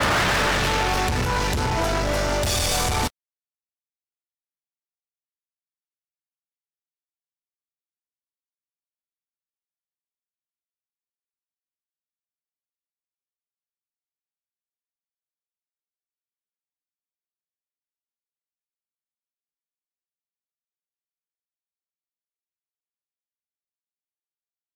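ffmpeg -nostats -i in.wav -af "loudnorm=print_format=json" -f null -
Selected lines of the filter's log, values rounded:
"input_i" : "-22.0",
"input_tp" : "-14.6",
"input_lra" : "16.4",
"input_thresh" : "-32.0",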